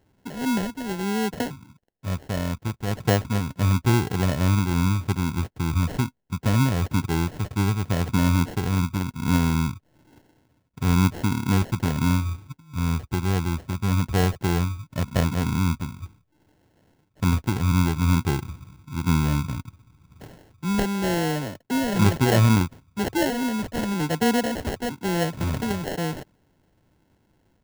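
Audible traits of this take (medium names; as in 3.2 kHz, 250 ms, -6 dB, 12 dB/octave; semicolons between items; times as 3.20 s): phasing stages 2, 1 Hz, lowest notch 770–2000 Hz; aliases and images of a low sample rate 1.2 kHz, jitter 0%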